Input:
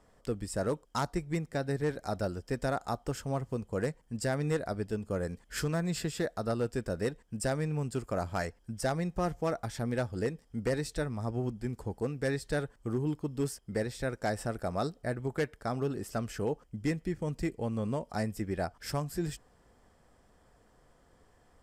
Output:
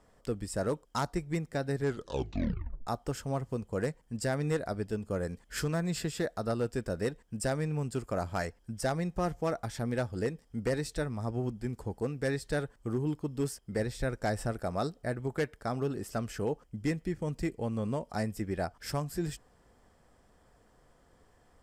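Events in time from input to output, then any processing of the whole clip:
1.79 tape stop 1.08 s
13.79–14.53 low shelf 74 Hz +10.5 dB

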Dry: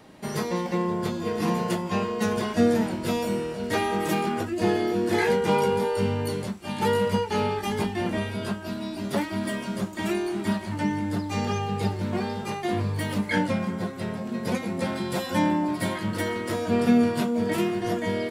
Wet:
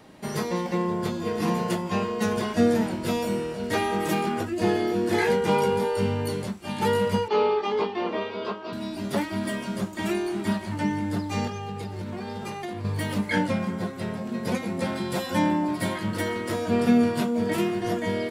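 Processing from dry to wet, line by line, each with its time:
7.28–8.73 speaker cabinet 330–4600 Hz, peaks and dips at 450 Hz +10 dB, 1100 Hz +9 dB, 1700 Hz -6 dB
11.47–12.85 compressor 12:1, threshold -29 dBFS

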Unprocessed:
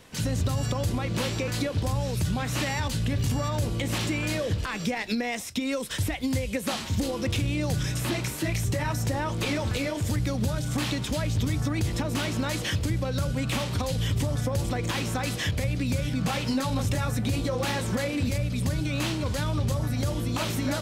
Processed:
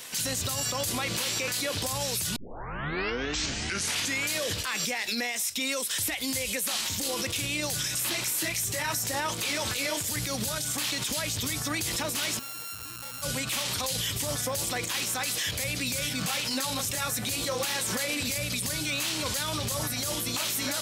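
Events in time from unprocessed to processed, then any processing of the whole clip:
2.36 tape start 1.96 s
12.39–13.22 sample sorter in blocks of 32 samples
whole clip: tilt +4 dB/oct; limiter -26.5 dBFS; gain +5.5 dB

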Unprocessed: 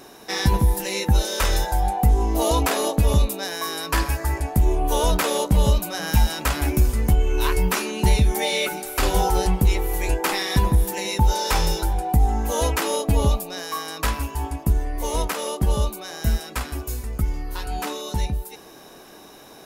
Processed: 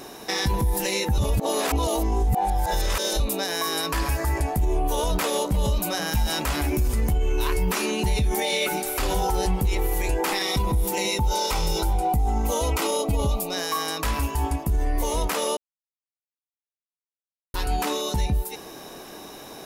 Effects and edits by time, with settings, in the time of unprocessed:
1.18–3.2 reverse
10.42–13.54 Butterworth band-stop 1700 Hz, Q 6.3
15.57–17.54 mute
whole clip: bell 1500 Hz -2.5 dB 0.34 oct; limiter -20 dBFS; gain +4.5 dB

